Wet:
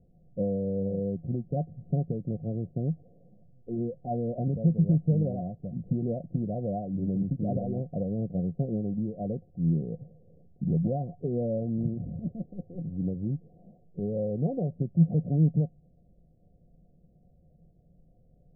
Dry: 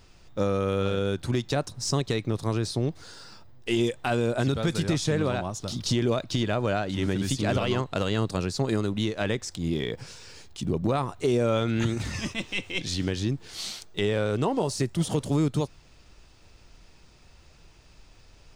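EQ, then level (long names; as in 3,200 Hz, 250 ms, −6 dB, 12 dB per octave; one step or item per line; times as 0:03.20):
Chebyshev low-pass with heavy ripple 740 Hz, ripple 9 dB
high-frequency loss of the air 450 metres
parametric band 160 Hz +9.5 dB 0.29 octaves
0.0 dB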